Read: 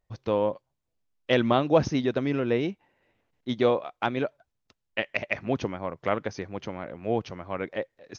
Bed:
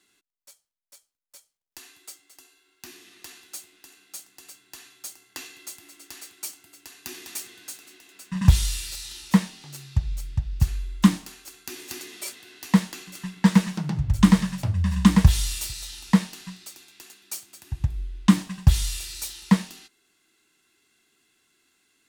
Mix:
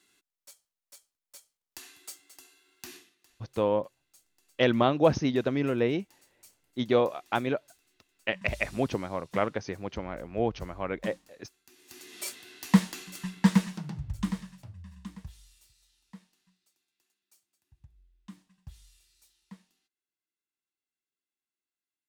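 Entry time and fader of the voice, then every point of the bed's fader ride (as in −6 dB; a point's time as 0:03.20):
3.30 s, −1.0 dB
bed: 0:02.96 −1 dB
0:03.17 −21.5 dB
0:11.73 −21.5 dB
0:12.21 −2 dB
0:13.32 −2 dB
0:15.37 −31 dB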